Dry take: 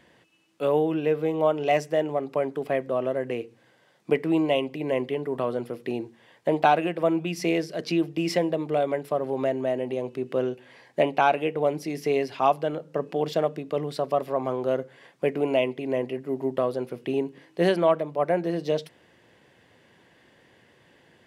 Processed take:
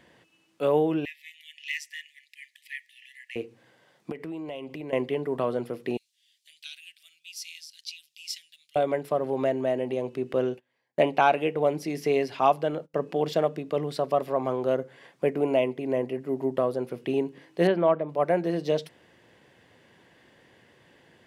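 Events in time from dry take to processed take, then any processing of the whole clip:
1.05–3.36 brick-wall FIR high-pass 1700 Hz
4.11–4.93 compressor 8:1, threshold -33 dBFS
5.97–8.76 inverse Chebyshev high-pass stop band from 1000 Hz, stop band 60 dB
10.33–12.94 gate -46 dBFS, range -25 dB
14.74–16.94 dynamic EQ 3300 Hz, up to -5 dB, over -45 dBFS, Q 0.85
17.67–18.09 air absorption 380 m

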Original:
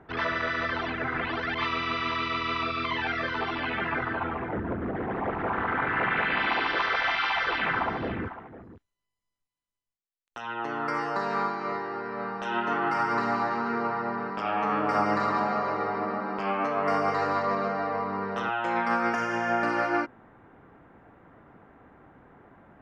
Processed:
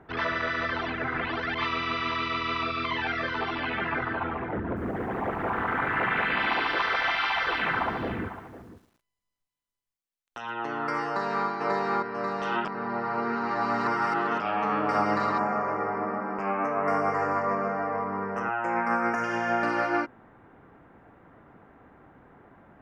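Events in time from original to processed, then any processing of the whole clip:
4.65–10.51 lo-fi delay 0.113 s, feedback 55%, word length 9-bit, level -14 dB
11.06–11.48 echo throw 0.54 s, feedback 60%, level -1 dB
12.65–14.4 reverse
15.38–19.24 Butterworth band-stop 3700 Hz, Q 1.1

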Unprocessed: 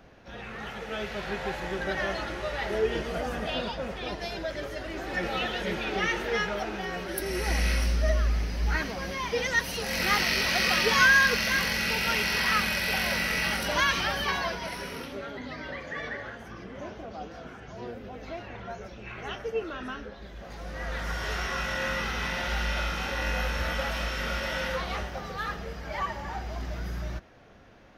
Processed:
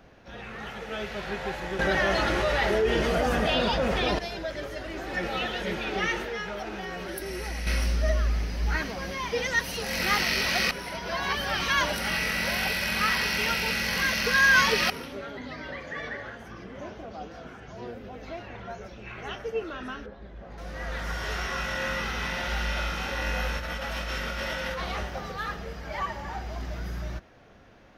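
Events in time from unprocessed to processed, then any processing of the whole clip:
1.79–4.19 fast leveller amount 70%
6.23–7.67 compressor 3:1, threshold -31 dBFS
10.71–14.9 reverse
20.06–20.58 LPF 1200 Hz 6 dB/oct
23.57–25.32 negative-ratio compressor -32 dBFS

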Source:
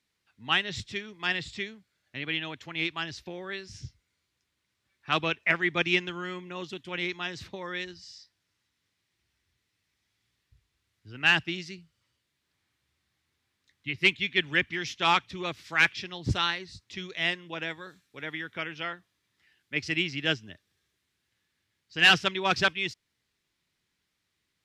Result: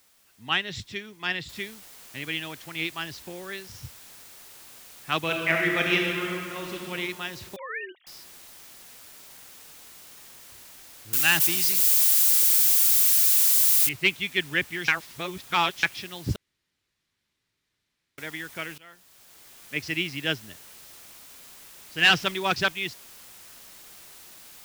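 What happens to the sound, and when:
1.49 noise floor step -62 dB -48 dB
5.18–6.92 reverb throw, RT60 2.3 s, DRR 0 dB
7.56–8.07 sine-wave speech
11.13–13.89 switching spikes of -16.5 dBFS
14.88–15.83 reverse
16.36–18.18 room tone
18.78–19.76 fade in, from -21 dB
21.98–22.53 G.711 law mismatch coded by mu

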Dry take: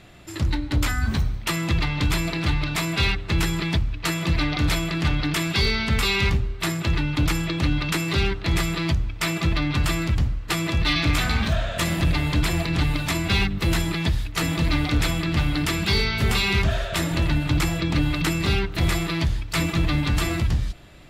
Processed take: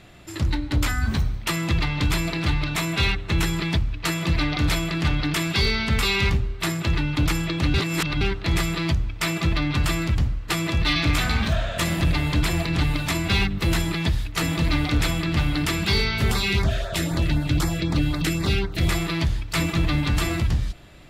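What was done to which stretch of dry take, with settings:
2.7–3.44 notch 4800 Hz, Q 13
7.74–8.21 reverse
16.31–18.89 LFO notch sine 3.9 Hz 860–3000 Hz

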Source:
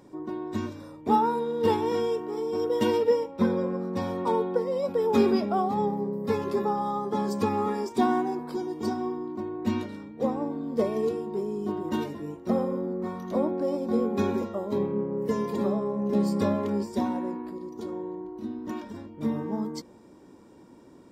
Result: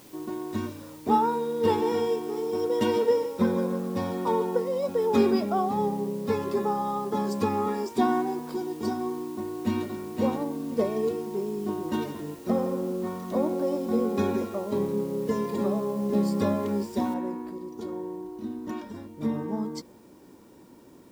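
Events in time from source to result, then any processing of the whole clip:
1.46–4.62 lo-fi delay 0.148 s, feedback 35%, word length 9-bit, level -11 dB
9.25–9.91 echo throw 0.52 s, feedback 15%, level -2.5 dB
11.89–15.46 thinning echo 0.164 s, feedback 32%, level -12 dB
17.14 noise floor step -54 dB -67 dB

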